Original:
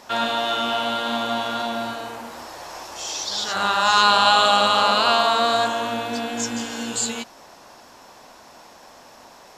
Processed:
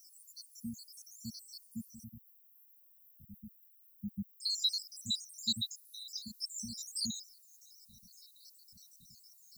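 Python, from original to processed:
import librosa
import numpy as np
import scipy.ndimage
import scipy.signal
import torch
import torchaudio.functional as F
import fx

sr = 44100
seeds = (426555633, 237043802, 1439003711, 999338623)

y = fx.spec_dropout(x, sr, seeds[0], share_pct=82)
y = fx.dmg_noise_colour(y, sr, seeds[1], colour='violet', level_db=-63.0)
y = fx.brickwall_bandstop(y, sr, low_hz=230.0, high_hz=fx.steps((0.0, 4200.0), (2.03, 12000.0), (4.4, 3700.0)))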